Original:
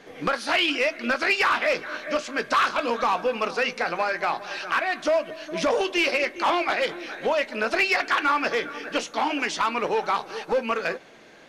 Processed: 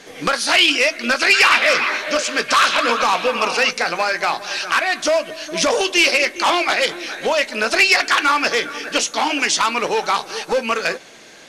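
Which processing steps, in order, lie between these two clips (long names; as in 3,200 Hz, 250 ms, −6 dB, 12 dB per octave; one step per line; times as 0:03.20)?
parametric band 8,300 Hz +13.5 dB 2.3 octaves
0:01.07–0:03.71: echo through a band-pass that steps 122 ms, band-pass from 2,800 Hz, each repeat −0.7 octaves, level −2 dB
level +4 dB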